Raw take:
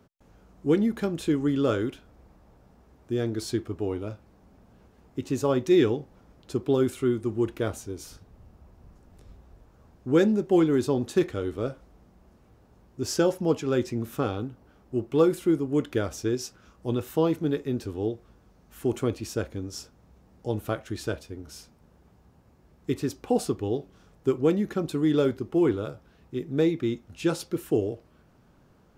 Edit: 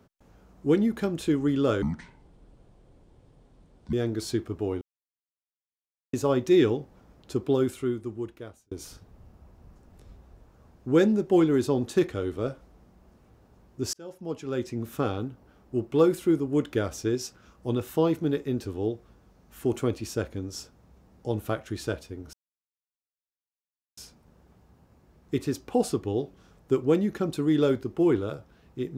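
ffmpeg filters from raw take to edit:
-filter_complex "[0:a]asplit=8[s0][s1][s2][s3][s4][s5][s6][s7];[s0]atrim=end=1.824[s8];[s1]atrim=start=1.82:end=3.13,asetpts=PTS-STARTPTS,asetrate=27342,aresample=44100,atrim=end_sample=93179,asetpts=PTS-STARTPTS[s9];[s2]atrim=start=3.126:end=4.01,asetpts=PTS-STARTPTS,afade=t=out:st=0.88:d=0.004:c=hsin[s10];[s3]atrim=start=4.01:end=5.33,asetpts=PTS-STARTPTS,volume=0[s11];[s4]atrim=start=5.33:end=7.91,asetpts=PTS-STARTPTS,afade=t=in:d=0.004:c=hsin,afade=t=out:st=1.31:d=1.27[s12];[s5]atrim=start=7.91:end=13.13,asetpts=PTS-STARTPTS,afade=t=in:d=0.004:c=hsin,afade=t=out:st=5.216:d=0.004:c=hsin[s13];[s6]atrim=start=13.13:end=21.53,asetpts=PTS-STARTPTS,afade=t=in:d=1.11,afade=t=out:st=8.396:d=0.004:c=hsin,apad=pad_dur=1.64[s14];[s7]atrim=start=21.53,asetpts=PTS-STARTPTS,afade=t=in:d=0.004:c=hsin[s15];[s8][s9]acrossfade=d=0.004:c1=hsin:c2=hsin[s16];[s10][s11][s12][s13][s14][s15]concat=n=6:v=0:a=1[s17];[s16][s17]acrossfade=d=0.004:c1=hsin:c2=hsin"

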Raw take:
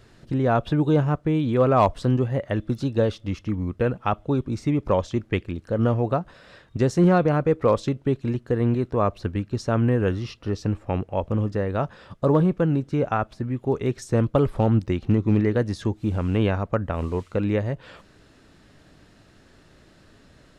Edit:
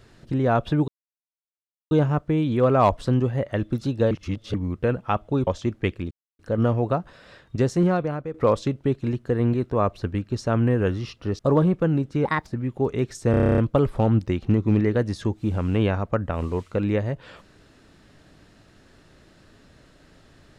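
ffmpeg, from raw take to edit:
-filter_complex "[0:a]asplit=19[s0][s1][s2][s3][s4][s5][s6][s7][s8][s9][s10][s11][s12][s13][s14][s15][s16][s17][s18];[s0]atrim=end=0.88,asetpts=PTS-STARTPTS,afade=t=out:st=0.876:d=0.004:c=hsin,apad=pad_dur=1.03[s19];[s1]atrim=start=0.88:end=3.082,asetpts=PTS-STARTPTS,afade=t=in:d=0.004:c=hsin[s20];[s2]atrim=start=3.078:end=3.512,asetpts=PTS-STARTPTS,areverse[s21];[s3]atrim=start=3.508:end=4.442[s22];[s4]atrim=start=4.958:end=5.6,asetpts=PTS-STARTPTS,afade=t=out:st=0.638:d=0.004:c=hsin,apad=pad_dur=0.28[s23];[s5]atrim=start=5.6:end=7.55,asetpts=PTS-STARTPTS,afade=t=in:d=0.004:c=hsin,afade=t=out:st=1.19:d=0.76:silence=0.211349[s24];[s6]atrim=start=7.55:end=10.602,asetpts=PTS-STARTPTS,afade=t=in:d=0.004:c=hsin:silence=0.211349[s25];[s7]atrim=start=12.168:end=13.034[s26];[s8]atrim=start=13.03:end=13.34,asetpts=PTS-STARTPTS,asetrate=62622,aresample=44100,atrim=end_sample=9627,asetpts=PTS-STARTPTS[s27];[s9]atrim=start=13.336:end=14.212[s28];[s10]atrim=start=14.178:end=14.212[s29];[s11]atrim=start=14.178:end=14.212[s30];[s12]atrim=start=14.178:end=14.212[s31];[s13]atrim=start=14.178:end=14.212[s32];[s14]atrim=start=14.178:end=14.212[s33];[s15]atrim=start=14.178:end=14.212[s34];[s16]atrim=start=14.178:end=14.212[s35];[s17]atrim=start=14.178:end=14.212[s36];[s18]atrim=start=14.178[s37];[s19][s20]concat=n=2:v=0:a=1[s38];[s38][s21]acrossfade=d=0.004:c1=hsin:c2=hsin[s39];[s39][s22]acrossfade=d=0.004:c1=hsin:c2=hsin[s40];[s23][s24][s25]concat=n=3:v=0:a=1[s41];[s40][s41]acrossfade=d=0.004:c1=hsin:c2=hsin[s42];[s42][s26]acrossfade=d=0.004:c1=hsin:c2=hsin[s43];[s43][s27]acrossfade=d=0.004:c1=hsin:c2=hsin[s44];[s44][s28]acrossfade=d=0.004:c1=hsin:c2=hsin[s45];[s45][s29]acrossfade=d=0.004:c1=hsin:c2=hsin[s46];[s46][s30]acrossfade=d=0.004:c1=hsin:c2=hsin[s47];[s47][s31]acrossfade=d=0.004:c1=hsin:c2=hsin[s48];[s48][s32]acrossfade=d=0.004:c1=hsin:c2=hsin[s49];[s49][s33]acrossfade=d=0.004:c1=hsin:c2=hsin[s50];[s50][s34]acrossfade=d=0.004:c1=hsin:c2=hsin[s51];[s51][s35]acrossfade=d=0.004:c1=hsin:c2=hsin[s52];[s52][s36]acrossfade=d=0.004:c1=hsin:c2=hsin[s53];[s53][s37]acrossfade=d=0.004:c1=hsin:c2=hsin"

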